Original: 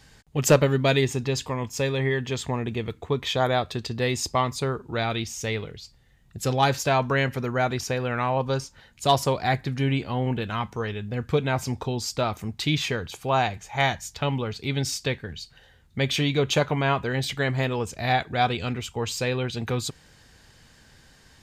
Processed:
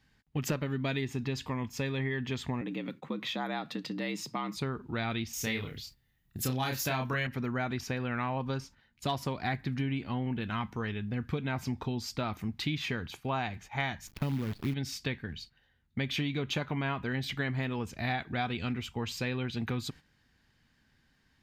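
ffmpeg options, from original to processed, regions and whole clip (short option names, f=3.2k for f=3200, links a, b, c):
-filter_complex "[0:a]asettb=1/sr,asplit=3[a][b][c];[a]atrim=end=2.614[d];[b]atrim=start=2.61:end=4.57,asetpts=PTS-STARTPTS,afade=t=in:d=0.004:c=qsin,afade=t=out:st=1.956:d=0.004:c=qsin,acompressor=threshold=-28dB:ratio=2:attack=3.2:release=140:knee=1:detection=peak,equalizer=f=97:w=4.7:g=-12.5,afreqshift=73[e];[c]atrim=start=4.566[f];[d][e]acrossfade=d=0.004:c1=hsin:c2=qsin[g];[g][f]acrossfade=d=0.004:c1=qsin:c2=hsin,asettb=1/sr,asplit=3[h][i][j];[h]atrim=end=5.334[k];[i]atrim=start=5.33:end=7.27,asetpts=PTS-STARTPTS,afade=t=in:d=0.004:c=qsin,afade=t=out:st=1.936:d=0.004:c=qsin,aemphasis=mode=production:type=50fm,asplit=2[l][m];[m]adelay=31,volume=-3.5dB[n];[l][n]amix=inputs=2:normalize=0,atrim=end_sample=85554[o];[j]atrim=start=7.266[p];[k][o]acrossfade=d=0.004:c1=hsin:c2=qsin[q];[q][p]acrossfade=d=0.004:c1=qsin:c2=hsin,asettb=1/sr,asplit=3[r][s][t];[r]atrim=end=14.074[u];[s]atrim=start=14.07:end=14.74,asetpts=PTS-STARTPTS,afade=t=in:d=0.004:c=qsin,afade=t=out:st=0.666:d=0.004:c=qsin,tiltshelf=f=720:g=7,acrusher=bits=6:dc=4:mix=0:aa=0.000001[v];[t]atrim=start=14.736[w];[u][v]acrossfade=d=0.004:c1=hsin:c2=qsin[x];[x][w]acrossfade=d=0.004:c1=qsin:c2=hsin,agate=range=-11dB:threshold=-42dB:ratio=16:detection=peak,equalizer=f=250:t=o:w=1:g=6,equalizer=f=500:t=o:w=1:g=-6,equalizer=f=2k:t=o:w=1:g=3,equalizer=f=8k:t=o:w=1:g=-9,acompressor=threshold=-24dB:ratio=6,volume=-4.5dB"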